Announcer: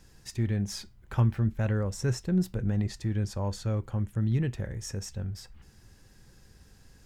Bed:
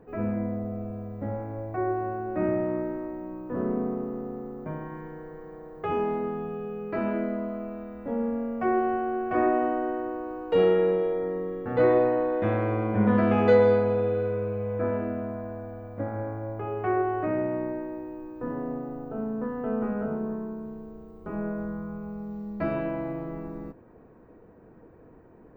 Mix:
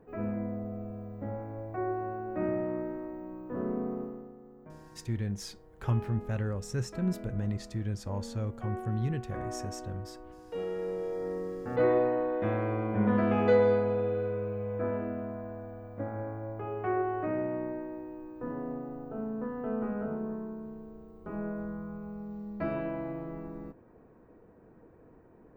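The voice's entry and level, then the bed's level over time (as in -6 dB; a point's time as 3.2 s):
4.70 s, -4.5 dB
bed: 4.02 s -5 dB
4.36 s -15 dB
10.66 s -15 dB
11.31 s -4.5 dB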